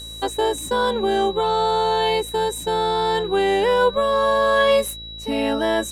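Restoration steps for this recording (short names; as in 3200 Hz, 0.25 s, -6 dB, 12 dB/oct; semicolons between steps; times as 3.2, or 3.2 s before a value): de-hum 55.6 Hz, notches 12; notch 3900 Hz, Q 30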